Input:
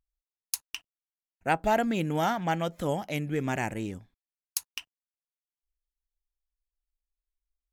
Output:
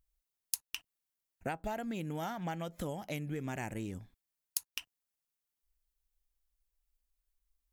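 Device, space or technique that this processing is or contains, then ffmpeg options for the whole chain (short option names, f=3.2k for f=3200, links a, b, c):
ASMR close-microphone chain: -af "lowshelf=f=200:g=4,acompressor=threshold=-37dB:ratio=10,highshelf=f=8.4k:g=7.5,volume=2dB"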